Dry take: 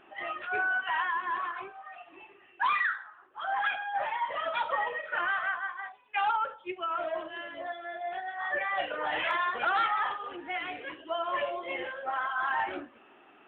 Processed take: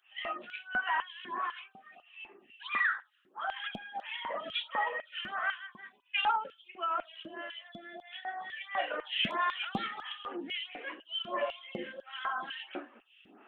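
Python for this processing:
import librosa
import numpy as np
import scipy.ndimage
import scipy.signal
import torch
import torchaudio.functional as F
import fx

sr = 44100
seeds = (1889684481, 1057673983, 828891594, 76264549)

y = fx.filter_lfo_highpass(x, sr, shape='square', hz=2.0, low_hz=210.0, high_hz=3000.0, q=3.9)
y = fx.stagger_phaser(y, sr, hz=1.5)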